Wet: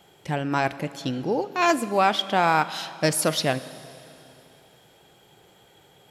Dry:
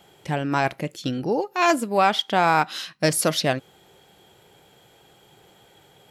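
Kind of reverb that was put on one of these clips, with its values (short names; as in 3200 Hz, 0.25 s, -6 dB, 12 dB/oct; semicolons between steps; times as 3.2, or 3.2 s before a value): Schroeder reverb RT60 3 s, combs from 31 ms, DRR 14.5 dB; gain -1.5 dB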